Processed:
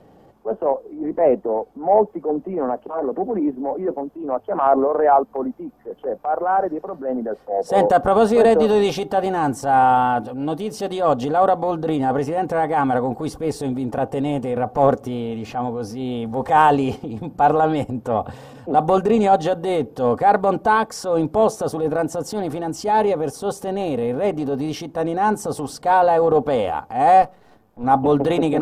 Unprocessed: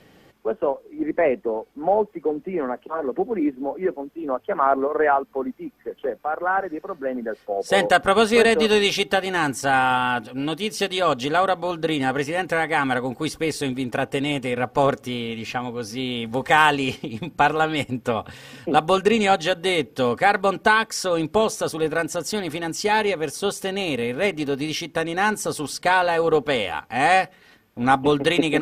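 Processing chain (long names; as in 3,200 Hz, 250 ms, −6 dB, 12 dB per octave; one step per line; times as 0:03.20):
0:27.22–0:27.84: gain on one half-wave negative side −12 dB
drawn EQ curve 400 Hz 0 dB, 760 Hz +5 dB, 2,100 Hz −15 dB, 7,400 Hz −11 dB
transient designer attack −7 dB, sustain +4 dB
level +3 dB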